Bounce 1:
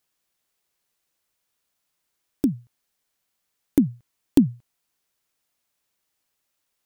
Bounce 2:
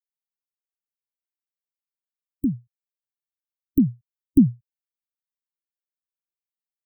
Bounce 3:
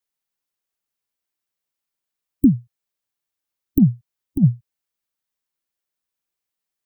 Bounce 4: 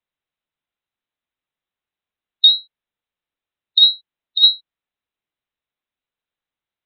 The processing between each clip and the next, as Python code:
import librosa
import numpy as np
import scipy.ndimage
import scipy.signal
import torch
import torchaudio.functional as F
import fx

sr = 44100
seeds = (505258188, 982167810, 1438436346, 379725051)

y1 = fx.bin_expand(x, sr, power=1.5)
y1 = scipy.signal.sosfilt(scipy.signal.cheby2(4, 50, [660.0, 9400.0], 'bandstop', fs=sr, output='sos'), y1)
y1 = y1 * librosa.db_to_amplitude(5.5)
y2 = fx.over_compress(y1, sr, threshold_db=-17.0, ratio=-0.5)
y2 = y2 * librosa.db_to_amplitude(6.5)
y3 = fx.freq_invert(y2, sr, carrier_hz=4000)
y3 = y3 * librosa.db_to_amplitude(2.0)